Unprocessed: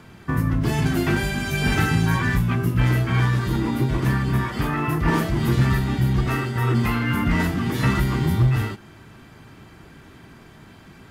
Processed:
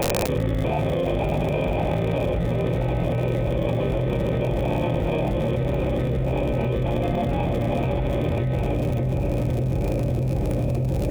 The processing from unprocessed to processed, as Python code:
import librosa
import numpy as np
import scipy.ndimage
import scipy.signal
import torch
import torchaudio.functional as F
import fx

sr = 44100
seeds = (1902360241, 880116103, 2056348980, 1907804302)

y = fx.low_shelf(x, sr, hz=110.0, db=9.0)
y = fx.sample_hold(y, sr, seeds[0], rate_hz=1400.0, jitter_pct=0)
y = fx.formant_cascade(y, sr, vowel='e')
y = fx.small_body(y, sr, hz=(370.0, 860.0, 1400.0), ring_ms=20, db=8)
y = fx.dmg_crackle(y, sr, seeds[1], per_s=92.0, level_db=-38.0)
y = fx.echo_diffused(y, sr, ms=558, feedback_pct=63, wet_db=-10)
y = fx.formant_shift(y, sr, semitones=5)
y = fx.low_shelf(y, sr, hz=240.0, db=6.0)
y = fx.echo_wet_lowpass(y, sr, ms=594, feedback_pct=79, hz=460.0, wet_db=-6.0)
y = fx.env_flatten(y, sr, amount_pct=100)
y = F.gain(torch.from_numpy(y), -1.5).numpy()